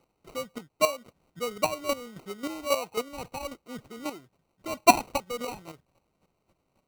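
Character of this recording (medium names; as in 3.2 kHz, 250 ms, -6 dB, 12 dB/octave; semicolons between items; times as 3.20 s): a quantiser's noise floor 12-bit, dither triangular; chopped level 3.7 Hz, depth 65%, duty 15%; aliases and images of a low sample rate 1.7 kHz, jitter 0%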